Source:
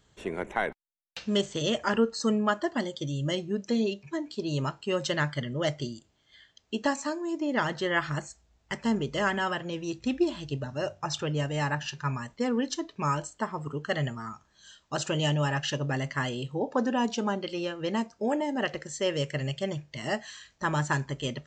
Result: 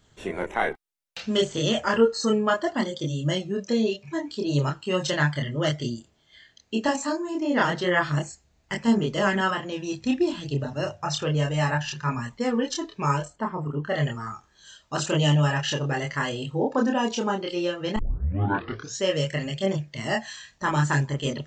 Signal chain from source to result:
0:13.25–0:13.95: low-pass filter 1,400 Hz 6 dB per octave
0:17.96: tape start 1.07 s
multi-voice chorus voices 2, 0.33 Hz, delay 27 ms, depth 1.3 ms
level +7 dB

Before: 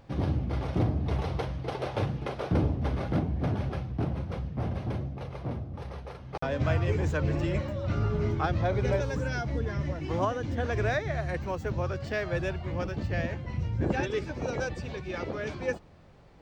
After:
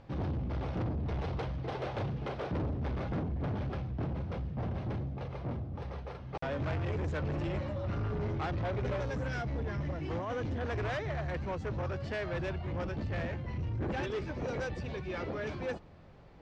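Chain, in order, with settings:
0:10.18–0:10.61: compressor whose output falls as the input rises −31 dBFS, ratio −1
soft clipping −30.5 dBFS, distortion −9 dB
high-frequency loss of the air 89 metres

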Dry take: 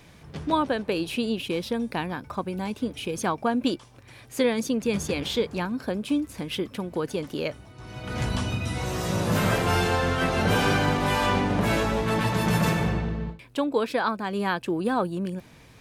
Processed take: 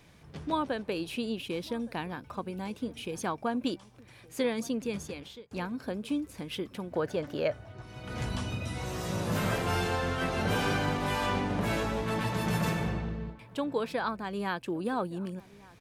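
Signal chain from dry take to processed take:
0:04.75–0:05.51: fade out
0:06.92–0:07.82: graphic EQ with 15 bands 100 Hz +10 dB, 630 Hz +11 dB, 1,600 Hz +8 dB, 10,000 Hz −7 dB
slap from a distant wall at 200 metres, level −21 dB
level −6.5 dB

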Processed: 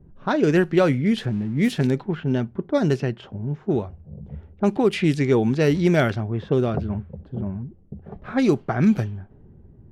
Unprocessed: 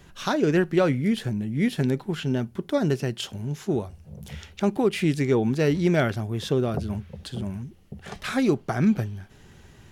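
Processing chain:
0:01.18–0:01.87: spike at every zero crossing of −28.5 dBFS
low-pass that shuts in the quiet parts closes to 330 Hz, open at −17 dBFS
level +3 dB

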